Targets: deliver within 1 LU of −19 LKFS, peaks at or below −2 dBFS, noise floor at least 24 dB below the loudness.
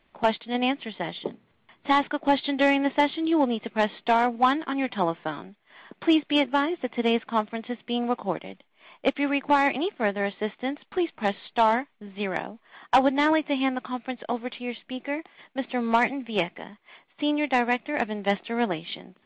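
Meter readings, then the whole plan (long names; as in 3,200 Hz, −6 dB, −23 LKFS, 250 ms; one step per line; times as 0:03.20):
integrated loudness −26.0 LKFS; sample peak −10.5 dBFS; target loudness −19.0 LKFS
→ level +7 dB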